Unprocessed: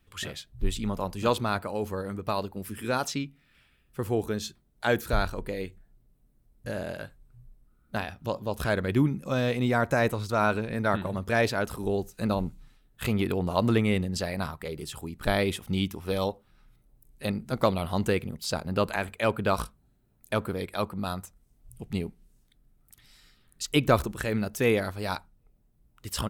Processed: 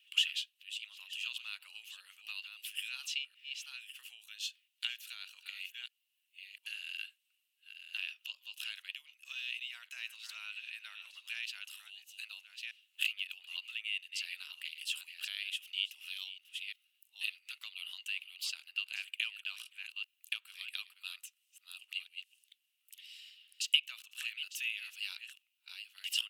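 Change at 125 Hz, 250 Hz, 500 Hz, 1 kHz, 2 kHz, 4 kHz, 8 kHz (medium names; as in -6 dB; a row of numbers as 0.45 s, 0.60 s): under -40 dB, under -40 dB, under -40 dB, -32.5 dB, -6.5 dB, +2.0 dB, -6.0 dB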